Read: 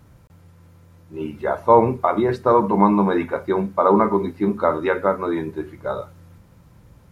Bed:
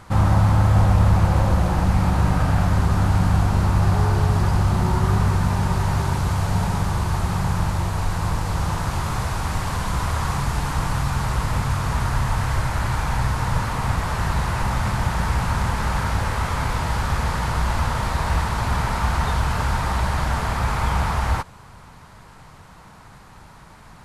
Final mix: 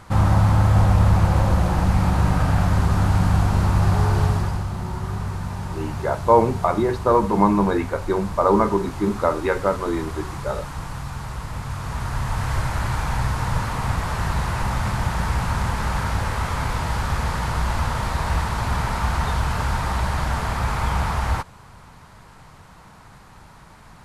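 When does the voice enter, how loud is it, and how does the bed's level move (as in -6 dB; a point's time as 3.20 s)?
4.60 s, -1.5 dB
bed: 4.26 s 0 dB
4.68 s -8.5 dB
11.52 s -8.5 dB
12.56 s -1 dB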